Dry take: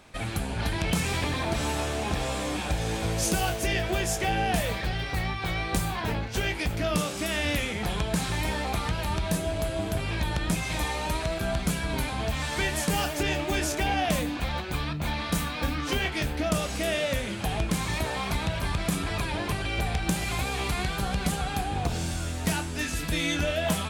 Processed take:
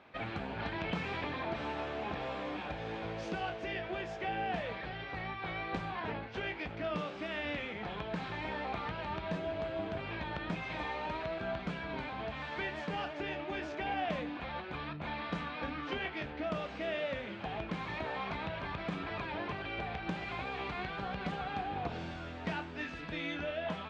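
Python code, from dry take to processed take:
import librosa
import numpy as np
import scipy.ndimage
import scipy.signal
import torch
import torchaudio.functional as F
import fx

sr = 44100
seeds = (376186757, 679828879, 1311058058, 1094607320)

y = fx.highpass(x, sr, hz=300.0, slope=6)
y = fx.rider(y, sr, range_db=10, speed_s=2.0)
y = scipy.signal.sosfilt(scipy.signal.bessel(4, 2400.0, 'lowpass', norm='mag', fs=sr, output='sos'), y)
y = y * librosa.db_to_amplitude(-6.0)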